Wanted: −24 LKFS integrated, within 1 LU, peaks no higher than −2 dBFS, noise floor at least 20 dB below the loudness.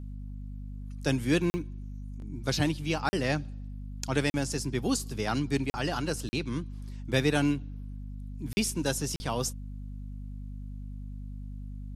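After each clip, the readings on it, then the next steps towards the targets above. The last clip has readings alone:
number of dropouts 7; longest dropout 40 ms; mains hum 50 Hz; hum harmonics up to 250 Hz; level of the hum −37 dBFS; integrated loudness −30.5 LKFS; sample peak −12.0 dBFS; target loudness −24.0 LKFS
→ repair the gap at 0:01.50/0:03.09/0:04.30/0:05.70/0:06.29/0:08.53/0:09.16, 40 ms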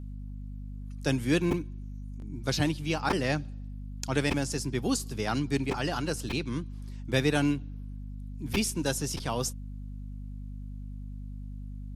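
number of dropouts 0; mains hum 50 Hz; hum harmonics up to 250 Hz; level of the hum −37 dBFS
→ hum removal 50 Hz, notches 5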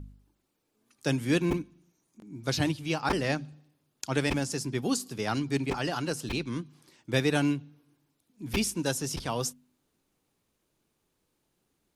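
mains hum none found; integrated loudness −30.5 LKFS; sample peak −12.0 dBFS; target loudness −24.0 LKFS
→ level +6.5 dB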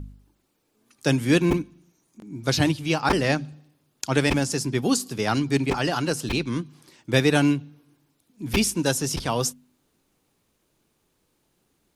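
integrated loudness −24.0 LKFS; sample peak −5.5 dBFS; background noise floor −71 dBFS

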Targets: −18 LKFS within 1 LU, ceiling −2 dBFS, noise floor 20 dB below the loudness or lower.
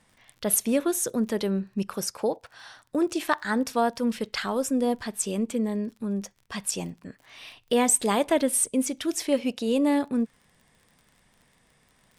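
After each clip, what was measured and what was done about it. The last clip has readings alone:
crackle rate 35 per second; integrated loudness −26.5 LKFS; sample peak −9.0 dBFS; target loudness −18.0 LKFS
→ click removal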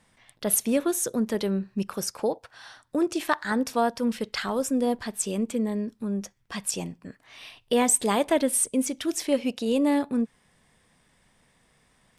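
crackle rate 0.082 per second; integrated loudness −26.5 LKFS; sample peak −9.0 dBFS; target loudness −18.0 LKFS
→ level +8.5 dB
brickwall limiter −2 dBFS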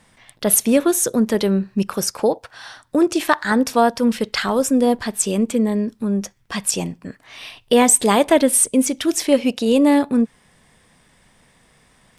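integrated loudness −18.0 LKFS; sample peak −2.0 dBFS; background noise floor −57 dBFS

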